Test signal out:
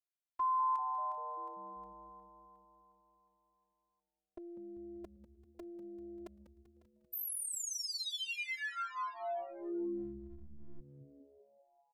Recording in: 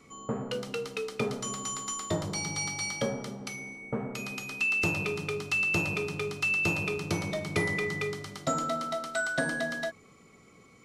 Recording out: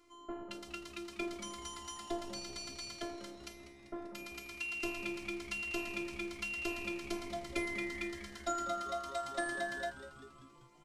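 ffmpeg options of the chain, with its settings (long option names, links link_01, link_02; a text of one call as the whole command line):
ffmpeg -i in.wav -filter_complex "[0:a]afftfilt=real='hypot(re,im)*cos(PI*b)':imag='0':win_size=512:overlap=0.75,asplit=8[link_01][link_02][link_03][link_04][link_05][link_06][link_07][link_08];[link_02]adelay=195,afreqshift=-140,volume=-13.5dB[link_09];[link_03]adelay=390,afreqshift=-280,volume=-17.4dB[link_10];[link_04]adelay=585,afreqshift=-420,volume=-21.3dB[link_11];[link_05]adelay=780,afreqshift=-560,volume=-25.1dB[link_12];[link_06]adelay=975,afreqshift=-700,volume=-29dB[link_13];[link_07]adelay=1170,afreqshift=-840,volume=-32.9dB[link_14];[link_08]adelay=1365,afreqshift=-980,volume=-36.8dB[link_15];[link_01][link_09][link_10][link_11][link_12][link_13][link_14][link_15]amix=inputs=8:normalize=0,volume=-4.5dB" out.wav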